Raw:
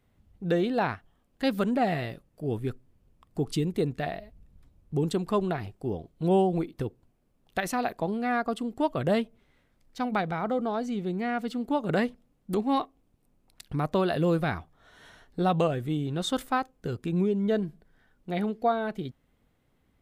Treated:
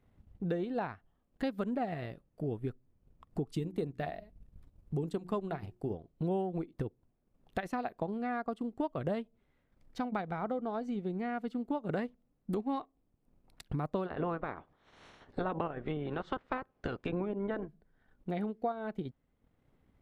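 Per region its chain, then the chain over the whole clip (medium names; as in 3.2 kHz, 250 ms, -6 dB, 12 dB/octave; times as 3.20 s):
3.48–5.94 s: treble shelf 5.2 kHz +6 dB + hum notches 60/120/180/240/300/360 Hz
14.05–17.67 s: spectral peaks clipped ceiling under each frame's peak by 21 dB + distance through air 69 m + low-pass that closes with the level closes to 1.5 kHz, closed at -24.5 dBFS
whole clip: treble shelf 2.8 kHz -10.5 dB; transient shaper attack +3 dB, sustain -7 dB; compression 2.5:1, threshold -35 dBFS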